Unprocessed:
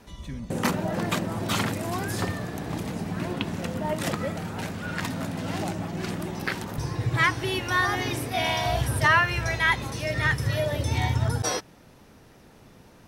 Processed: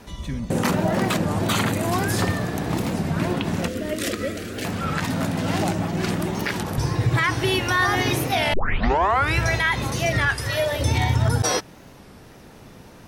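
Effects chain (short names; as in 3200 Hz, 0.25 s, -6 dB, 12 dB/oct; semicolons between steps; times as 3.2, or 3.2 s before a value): 1.45–1.88 notch 5300 Hz, Q 6.9; 8.54 tape start 0.85 s; 10.29–10.81 bell 150 Hz -12 dB 2.3 oct; limiter -18 dBFS, peak gain reduction 9.5 dB; 3.68–4.66 fixed phaser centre 360 Hz, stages 4; record warp 33 1/3 rpm, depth 160 cents; gain +7 dB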